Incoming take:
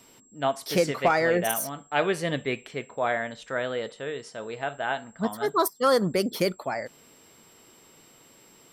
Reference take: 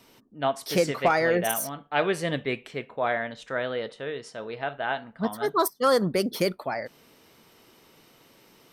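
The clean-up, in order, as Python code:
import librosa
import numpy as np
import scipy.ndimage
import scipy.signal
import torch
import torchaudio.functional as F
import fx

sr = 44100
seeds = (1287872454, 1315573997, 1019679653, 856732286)

y = fx.notch(x, sr, hz=7600.0, q=30.0)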